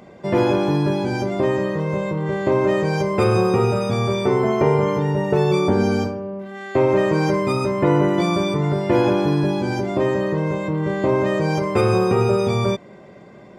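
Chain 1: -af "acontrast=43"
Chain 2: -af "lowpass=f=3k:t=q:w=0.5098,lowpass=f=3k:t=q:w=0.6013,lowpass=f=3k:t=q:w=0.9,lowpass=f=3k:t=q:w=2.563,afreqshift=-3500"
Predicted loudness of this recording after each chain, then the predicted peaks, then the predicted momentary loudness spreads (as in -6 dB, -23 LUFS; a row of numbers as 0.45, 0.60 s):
-14.5, -16.0 LUFS; -2.0, -5.0 dBFS; 5, 6 LU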